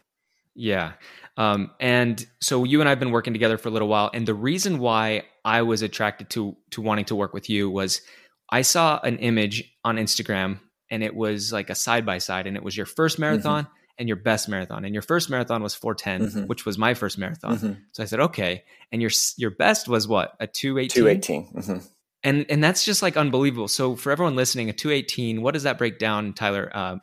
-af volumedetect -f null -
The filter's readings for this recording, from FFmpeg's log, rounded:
mean_volume: -23.9 dB
max_volume: -2.3 dB